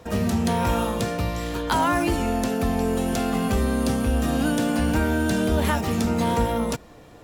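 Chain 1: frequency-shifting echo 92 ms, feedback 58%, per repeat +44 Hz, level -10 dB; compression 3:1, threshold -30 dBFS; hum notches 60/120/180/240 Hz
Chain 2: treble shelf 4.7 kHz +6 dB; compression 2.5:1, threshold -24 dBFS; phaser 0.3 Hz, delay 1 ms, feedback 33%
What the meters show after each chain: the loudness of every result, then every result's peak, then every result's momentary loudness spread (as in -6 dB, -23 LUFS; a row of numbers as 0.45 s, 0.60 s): -31.5 LUFS, -25.0 LUFS; -17.5 dBFS, -10.0 dBFS; 2 LU, 3 LU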